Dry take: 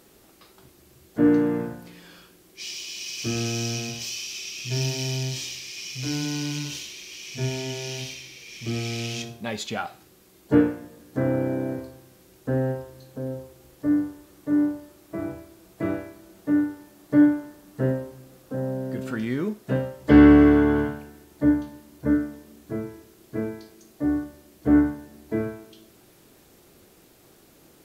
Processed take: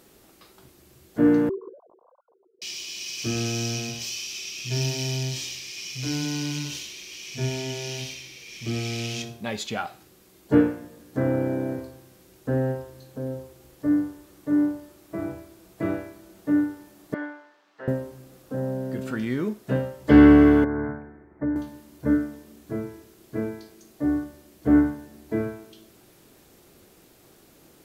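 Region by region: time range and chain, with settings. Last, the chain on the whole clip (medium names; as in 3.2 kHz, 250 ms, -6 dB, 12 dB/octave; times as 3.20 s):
1.49–2.62 s: formants replaced by sine waves + steep low-pass 1.1 kHz 72 dB/octave + comb of notches 420 Hz
17.14–17.88 s: high-pass 920 Hz + distance through air 200 m
20.64–21.56 s: steep low-pass 2.1 kHz 72 dB/octave + compression 3:1, threshold -24 dBFS
whole clip: none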